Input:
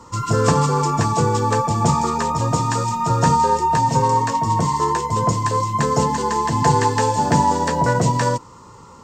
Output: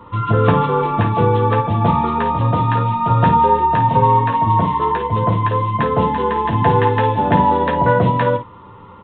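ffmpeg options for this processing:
ffmpeg -i in.wav -filter_complex "[0:a]asplit=2[link_01][link_02];[link_02]aecho=0:1:10|53:0.422|0.335[link_03];[link_01][link_03]amix=inputs=2:normalize=0,aresample=8000,aresample=44100,volume=2dB" out.wav

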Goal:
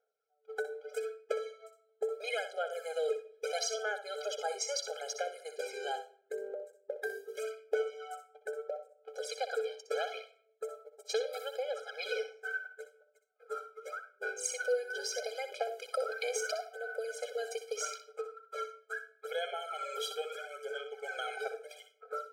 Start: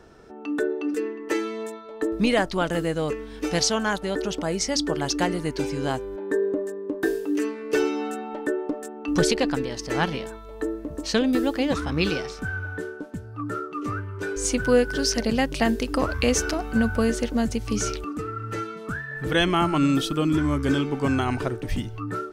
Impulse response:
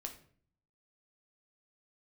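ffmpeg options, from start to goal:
-filter_complex "[0:a]agate=range=-34dB:threshold=-28dB:ratio=16:detection=peak,aphaser=in_gain=1:out_gain=1:delay=2.6:decay=0.62:speed=0.77:type=sinusoidal,acompressor=threshold=-30dB:ratio=5,asplit=2[link_01][link_02];[link_02]adynamicequalizer=threshold=0.00447:dfrequency=140:dqfactor=0.73:tfrequency=140:tqfactor=0.73:attack=5:release=100:ratio=0.375:range=1.5:mode=boostabove:tftype=bell[link_03];[1:a]atrim=start_sample=2205,highshelf=frequency=2700:gain=2.5,adelay=62[link_04];[link_03][link_04]afir=irnorm=-1:irlink=0,volume=-7dB[link_05];[link_01][link_05]amix=inputs=2:normalize=0,afftfilt=real='re*eq(mod(floor(b*sr/1024/420),2),1)':imag='im*eq(mod(floor(b*sr/1024/420),2),1)':win_size=1024:overlap=0.75"

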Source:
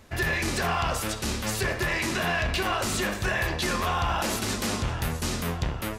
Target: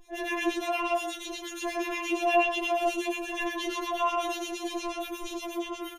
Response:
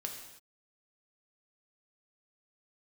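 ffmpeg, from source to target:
-filter_complex "[0:a]aecho=1:1:2.6:0.87,asplit=2[link_01][link_02];[1:a]atrim=start_sample=2205,atrim=end_sample=3087,adelay=94[link_03];[link_02][link_03]afir=irnorm=-1:irlink=0,volume=0.5dB[link_04];[link_01][link_04]amix=inputs=2:normalize=0,acrossover=split=1500[link_05][link_06];[link_05]aeval=exprs='val(0)*(1-1/2+1/2*cos(2*PI*8.4*n/s))':channel_layout=same[link_07];[link_06]aeval=exprs='val(0)*(1-1/2-1/2*cos(2*PI*8.4*n/s))':channel_layout=same[link_08];[link_07][link_08]amix=inputs=2:normalize=0,acrossover=split=4000[link_09][link_10];[link_10]acompressor=threshold=-43dB:ratio=4:attack=1:release=60[link_11];[link_09][link_11]amix=inputs=2:normalize=0,afftfilt=real='re*4*eq(mod(b,16),0)':imag='im*4*eq(mod(b,16),0)':win_size=2048:overlap=0.75"

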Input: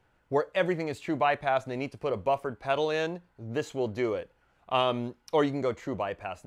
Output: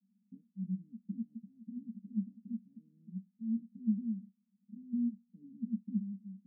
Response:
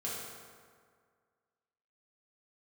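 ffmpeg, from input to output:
-af "asuperpass=centerf=210:order=8:qfactor=4.5,volume=10.5dB"

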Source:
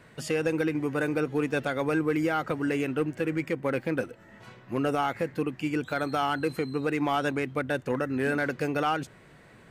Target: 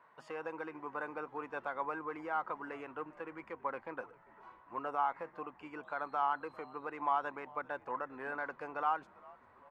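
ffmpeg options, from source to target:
ffmpeg -i in.wav -filter_complex "[0:a]bandpass=frequency=1000:width_type=q:width=4.6:csg=0,asplit=5[link_01][link_02][link_03][link_04][link_05];[link_02]adelay=396,afreqshift=-100,volume=-23dB[link_06];[link_03]adelay=792,afreqshift=-200,volume=-28.5dB[link_07];[link_04]adelay=1188,afreqshift=-300,volume=-34dB[link_08];[link_05]adelay=1584,afreqshift=-400,volume=-39.5dB[link_09];[link_01][link_06][link_07][link_08][link_09]amix=inputs=5:normalize=0,volume=2.5dB" out.wav

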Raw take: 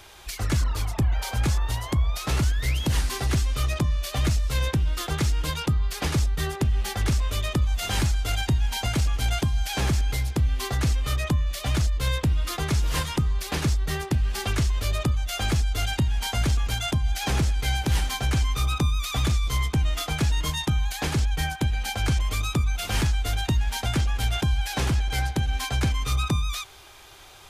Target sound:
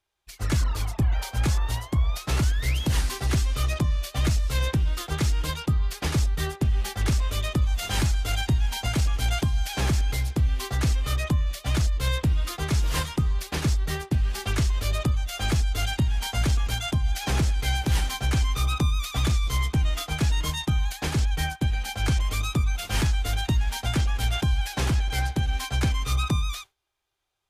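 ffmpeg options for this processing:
ffmpeg -i in.wav -af "agate=range=-33dB:threshold=-25dB:ratio=3:detection=peak" out.wav

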